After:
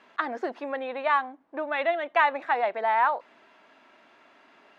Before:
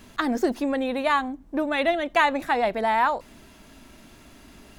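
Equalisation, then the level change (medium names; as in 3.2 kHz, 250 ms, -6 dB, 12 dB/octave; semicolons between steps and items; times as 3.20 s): band-pass 610–2200 Hz; 0.0 dB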